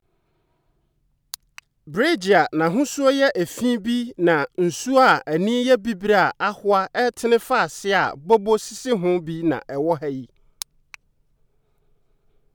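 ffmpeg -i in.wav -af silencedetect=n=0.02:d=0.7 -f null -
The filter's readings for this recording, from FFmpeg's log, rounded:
silence_start: 0.00
silence_end: 1.34 | silence_duration: 1.34
silence_start: 10.94
silence_end: 12.55 | silence_duration: 1.60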